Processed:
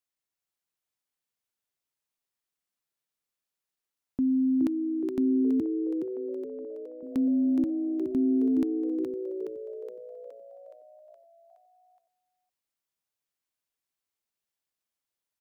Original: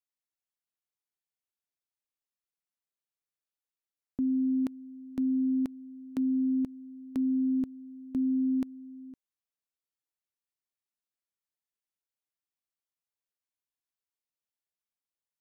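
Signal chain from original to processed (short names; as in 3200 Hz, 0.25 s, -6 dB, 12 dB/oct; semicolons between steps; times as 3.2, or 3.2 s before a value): 5.6–7.03 ladder band-pass 540 Hz, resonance 60%; frequency-shifting echo 0.419 s, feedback 57%, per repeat +59 Hz, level -5.5 dB; gain +3 dB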